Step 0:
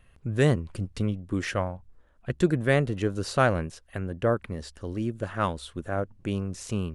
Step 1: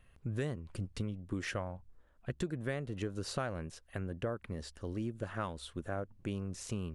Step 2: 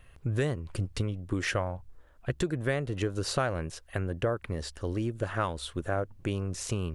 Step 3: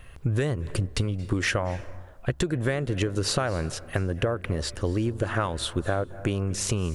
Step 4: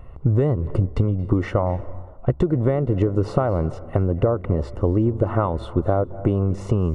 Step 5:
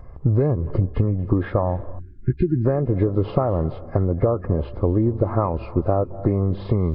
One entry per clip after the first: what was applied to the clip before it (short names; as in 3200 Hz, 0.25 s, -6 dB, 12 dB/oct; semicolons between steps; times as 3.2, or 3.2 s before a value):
compressor 6:1, threshold -28 dBFS, peak gain reduction 12 dB; gain -5 dB
bell 210 Hz -6.5 dB 0.58 oct; gain +8.5 dB
compressor, threshold -30 dBFS, peak gain reduction 7.5 dB; on a send at -17.5 dB: reverb RT60 1.0 s, pre-delay 0.217 s; on the sum: gain +8.5 dB
polynomial smoothing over 65 samples; gain +7 dB
nonlinear frequency compression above 1200 Hz 1.5:1; spectral delete 1.99–2.65, 400–1400 Hz